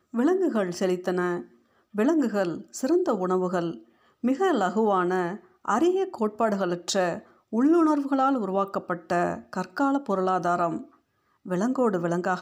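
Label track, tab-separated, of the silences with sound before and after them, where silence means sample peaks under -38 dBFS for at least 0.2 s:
1.430000	1.950000	silence
3.780000	4.240000	silence
5.370000	5.650000	silence
7.190000	7.530000	silence
10.830000	11.460000	silence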